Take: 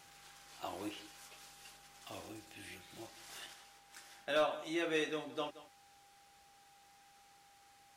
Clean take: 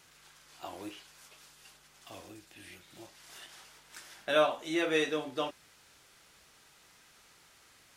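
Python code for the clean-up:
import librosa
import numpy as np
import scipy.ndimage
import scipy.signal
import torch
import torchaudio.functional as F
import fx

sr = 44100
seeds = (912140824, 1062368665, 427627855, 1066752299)

y = fx.fix_declip(x, sr, threshold_db=-24.5)
y = fx.notch(y, sr, hz=800.0, q=30.0)
y = fx.fix_echo_inverse(y, sr, delay_ms=176, level_db=-17.0)
y = fx.gain(y, sr, db=fx.steps((0.0, 0.0), (3.53, 6.0)))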